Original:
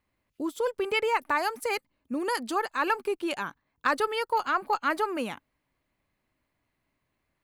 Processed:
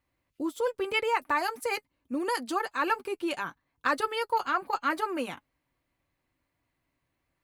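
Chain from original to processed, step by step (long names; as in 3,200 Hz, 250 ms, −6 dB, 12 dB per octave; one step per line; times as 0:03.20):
notch comb filter 210 Hz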